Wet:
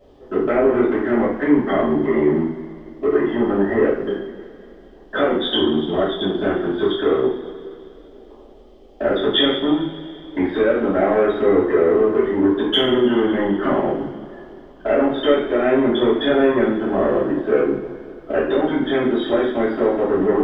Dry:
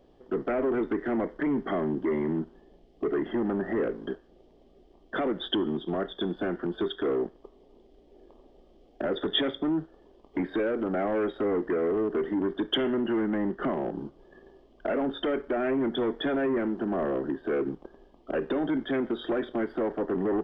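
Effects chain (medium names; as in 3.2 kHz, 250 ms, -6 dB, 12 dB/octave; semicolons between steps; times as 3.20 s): two-slope reverb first 0.52 s, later 2.9 s, from -18 dB, DRR -9.5 dB; trim +1 dB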